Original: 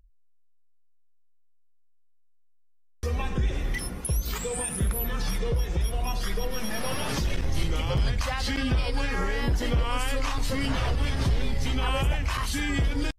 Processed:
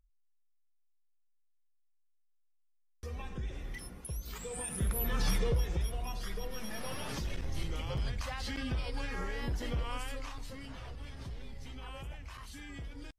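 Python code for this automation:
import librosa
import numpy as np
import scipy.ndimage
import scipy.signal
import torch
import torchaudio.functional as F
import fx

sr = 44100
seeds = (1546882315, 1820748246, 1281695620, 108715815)

y = fx.gain(x, sr, db=fx.line((4.27, -13.0), (5.3, -1.0), (6.08, -10.0), (9.9, -10.0), (10.65, -19.0)))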